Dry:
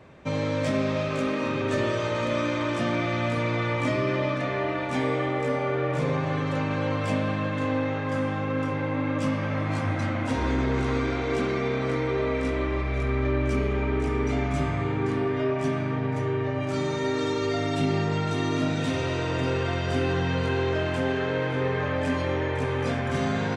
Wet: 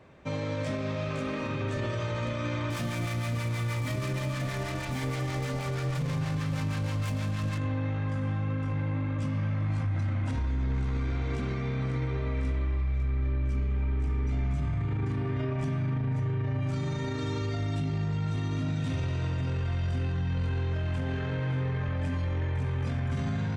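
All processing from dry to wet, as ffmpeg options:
-filter_complex "[0:a]asettb=1/sr,asplit=3[a][b][c];[a]atrim=end=2.704[d];[b]atrim=start=2.7:end=7.58,asetpts=PTS-STARTPTS,afade=t=in:d=0.004:c=qsin,afade=t=out:st=4.876:d=0.004:c=qsin,highshelf=f=2.7k:g=3.5,acrusher=bits=4:mix=0:aa=0.5,acrossover=split=780[e][f];[e]aeval=exprs='val(0)*(1-0.5/2+0.5/2*cos(2*PI*6.3*n/s))':c=same[g];[f]aeval=exprs='val(0)*(1-0.5/2-0.5/2*cos(2*PI*6.3*n/s))':c=same[h];[g][h]amix=inputs=2:normalize=0[i];[c]atrim=start=7.576[j];[d][i]acrossfade=d=0.004:c1=hsin:c2=qsin[k];[k][j]acrossfade=d=0.004:c1=qsin:c2=hsin,asubboost=boost=6.5:cutoff=150,alimiter=limit=-19dB:level=0:latency=1:release=26,volume=-4.5dB"

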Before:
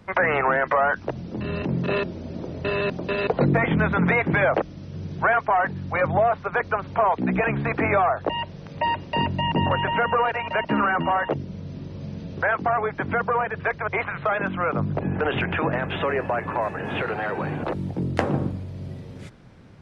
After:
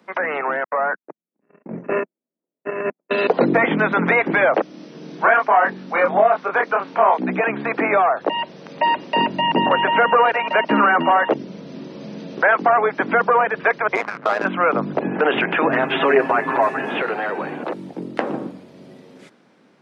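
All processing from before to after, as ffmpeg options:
-filter_complex "[0:a]asettb=1/sr,asplit=3[a][b][c];[a]atrim=end=0.644[d];[b]atrim=start=0.64:end=3.11,asetpts=PTS-STARTPTS,afade=t=in:d=0.004:c=qsin,afade=t=out:st=2.466:d=0.004:c=qsin,agate=range=-59dB:threshold=-24dB:ratio=16:release=100:detection=peak,asuperstop=centerf=4100:order=8:qfactor=0.93[e];[c]atrim=start=3.106[f];[d][e]acrossfade=d=0.004:c1=hsin:c2=qsin[g];[g][f]acrossfade=d=0.004:c1=qsin:c2=hsin,asettb=1/sr,asplit=3[h][i][j];[h]atrim=end=4.714[k];[i]atrim=start=4.71:end=7.19,asetpts=PTS-STARTPTS,afade=t=in:d=0.004:c=qsin,afade=t=out:st=2.476:d=0.004:c=qsin,highpass=150,asplit=2[l][m];[m]adelay=26,volume=-2.5dB[n];[l][n]amix=inputs=2:normalize=0,atrim=end_sample=109368[o];[j]atrim=start=7.186[p];[k][o]acrossfade=d=0.004:c1=hsin:c2=qsin[q];[q][p]acrossfade=d=0.004:c1=qsin:c2=hsin,asettb=1/sr,asplit=3[r][s][t];[r]atrim=end=13.954[u];[s]atrim=start=13.95:end=14.45,asetpts=PTS-STARTPTS,afade=t=in:d=0.004:c=qsin,afade=t=out:st=0.496:d=0.004:c=qsin,tremolo=f=110:d=0.75,adynamicsmooth=sensitivity=2:basefreq=940[v];[t]atrim=start=14.446[w];[u][v]acrossfade=d=0.004:c1=hsin:c2=qsin[x];[x][w]acrossfade=d=0.004:c1=qsin:c2=hsin,asettb=1/sr,asplit=3[y][z][aa];[y]atrim=end=15.694[ab];[z]atrim=start=15.69:end=16.85,asetpts=PTS-STARTPTS,afade=t=in:d=0.004:c=qsin,afade=t=out:st=1.156:d=0.004:c=qsin,bandreject=f=540:w=8.5,aecho=1:1:7.5:0.95,atrim=end_sample=51156[ac];[aa]atrim=start=16.846[ad];[ab][ac]acrossfade=d=0.004:c1=hsin:c2=qsin[ae];[ae][ad]acrossfade=d=0.004:c1=qsin:c2=hsin,acrossover=split=4400[af][ag];[ag]acompressor=threshold=-53dB:ratio=4:attack=1:release=60[ah];[af][ah]amix=inputs=2:normalize=0,highpass=f=220:w=0.5412,highpass=f=220:w=1.3066,dynaudnorm=f=360:g=7:m=11.5dB,volume=-2dB"

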